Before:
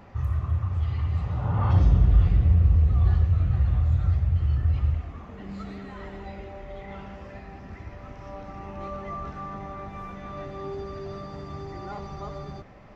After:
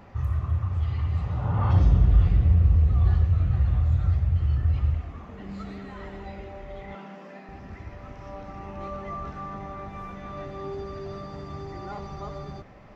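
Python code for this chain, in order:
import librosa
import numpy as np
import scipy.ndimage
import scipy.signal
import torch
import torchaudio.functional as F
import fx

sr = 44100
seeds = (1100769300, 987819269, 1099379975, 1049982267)

y = fx.cheby1_highpass(x, sr, hz=160.0, order=8, at=(6.95, 7.49))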